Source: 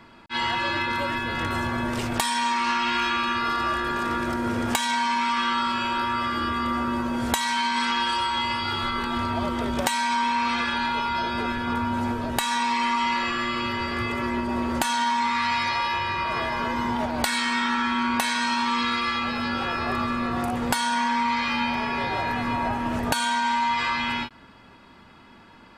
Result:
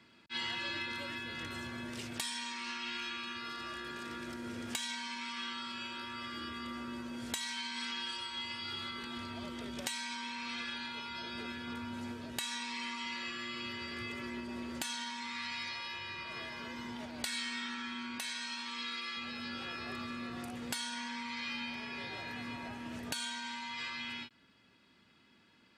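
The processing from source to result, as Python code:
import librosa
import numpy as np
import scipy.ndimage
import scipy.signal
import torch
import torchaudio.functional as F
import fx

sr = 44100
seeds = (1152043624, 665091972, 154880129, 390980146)

y = fx.highpass(x, sr, hz=340.0, slope=6, at=(18.18, 19.17))
y = fx.weighting(y, sr, curve='A')
y = fx.rider(y, sr, range_db=10, speed_s=2.0)
y = fx.tone_stack(y, sr, knobs='10-0-1')
y = F.gain(torch.from_numpy(y), 11.0).numpy()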